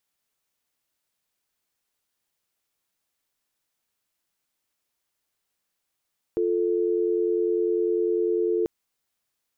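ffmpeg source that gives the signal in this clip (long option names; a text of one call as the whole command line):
ffmpeg -f lavfi -i "aevalsrc='0.0668*(sin(2*PI*350*t)+sin(2*PI*440*t))':duration=2.29:sample_rate=44100" out.wav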